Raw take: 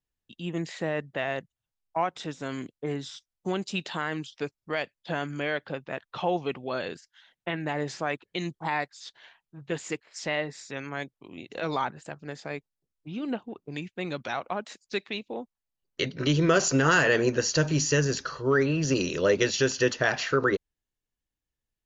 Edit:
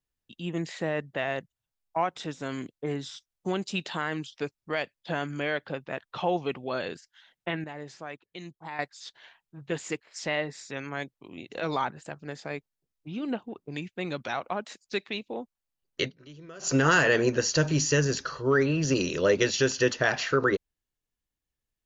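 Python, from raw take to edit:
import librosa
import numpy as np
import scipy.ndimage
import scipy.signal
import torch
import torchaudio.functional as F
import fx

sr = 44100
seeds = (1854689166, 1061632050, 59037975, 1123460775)

y = fx.edit(x, sr, fx.clip_gain(start_s=7.64, length_s=1.15, db=-10.0),
    fx.fade_down_up(start_s=16.04, length_s=0.66, db=-24.0, fade_s=0.13, curve='qua'), tone=tone)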